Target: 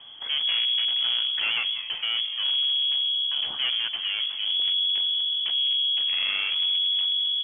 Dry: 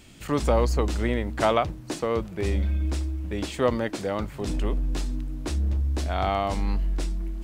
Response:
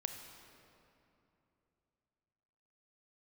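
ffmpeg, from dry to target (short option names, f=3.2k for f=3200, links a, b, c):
-filter_complex "[0:a]lowshelf=f=280:g=8.5,asplit=6[a][b][c][d][e][f];[b]adelay=188,afreqshift=73,volume=-19dB[g];[c]adelay=376,afreqshift=146,volume=-23.7dB[h];[d]adelay=564,afreqshift=219,volume=-28.5dB[i];[e]adelay=752,afreqshift=292,volume=-33.2dB[j];[f]adelay=940,afreqshift=365,volume=-37.9dB[k];[a][g][h][i][j][k]amix=inputs=6:normalize=0,aeval=exprs='0.596*(cos(1*acos(clip(val(0)/0.596,-1,1)))-cos(1*PI/2))+0.0531*(cos(8*acos(clip(val(0)/0.596,-1,1)))-cos(8*PI/2))':c=same,asoftclip=type=tanh:threshold=-22.5dB,lowpass=f=2.9k:t=q:w=0.5098,lowpass=f=2.9k:t=q:w=0.6013,lowpass=f=2.9k:t=q:w=0.9,lowpass=f=2.9k:t=q:w=2.563,afreqshift=-3400"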